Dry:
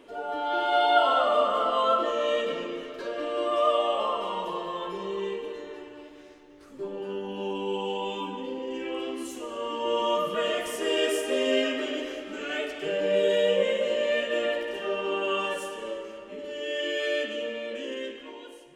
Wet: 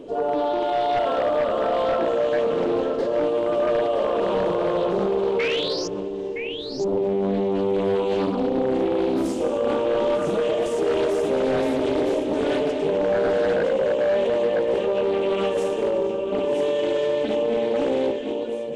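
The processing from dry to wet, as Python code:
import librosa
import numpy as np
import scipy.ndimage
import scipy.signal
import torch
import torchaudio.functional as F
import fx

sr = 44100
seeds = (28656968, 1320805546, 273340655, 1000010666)

p1 = fx.graphic_eq(x, sr, hz=(125, 500, 1000, 2000, 8000), db=(7, 5, -7, -11, 10))
p2 = fx.over_compress(p1, sr, threshold_db=-33.0, ratio=-1.0)
p3 = p1 + (p2 * 10.0 ** (2.0 / 20.0))
p4 = fx.spec_paint(p3, sr, seeds[0], shape='rise', start_s=5.39, length_s=0.49, low_hz=2100.0, high_hz=5900.0, level_db=-23.0)
p5 = p4 + fx.echo_single(p4, sr, ms=967, db=-7.5, dry=0)
p6 = 10.0 ** (-16.5 / 20.0) * (np.abs((p5 / 10.0 ** (-16.5 / 20.0) + 3.0) % 4.0 - 2.0) - 1.0)
p7 = fx.spacing_loss(p6, sr, db_at_10k=23)
p8 = fx.notch(p7, sr, hz=1400.0, q=27.0)
p9 = fx.room_flutter(p8, sr, wall_m=5.0, rt60_s=0.26, at=(9.29, 10.51))
p10 = fx.doppler_dist(p9, sr, depth_ms=0.39)
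y = p10 * 10.0 ** (2.5 / 20.0)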